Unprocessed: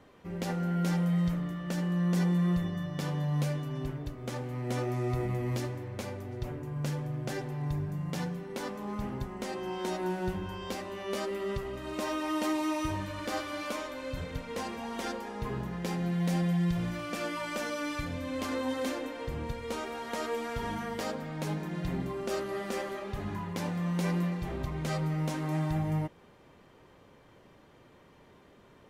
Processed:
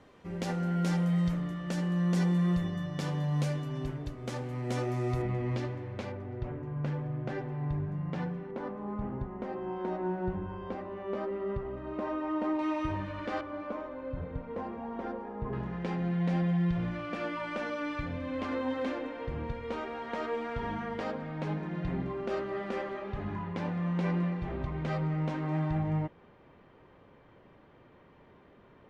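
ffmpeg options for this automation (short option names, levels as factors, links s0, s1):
-af "asetnsamples=n=441:p=0,asendcmd='5.22 lowpass f 3600;6.12 lowpass f 2100;8.51 lowpass f 1300;12.59 lowpass f 2400;13.41 lowpass f 1100;15.53 lowpass f 2600',lowpass=9200"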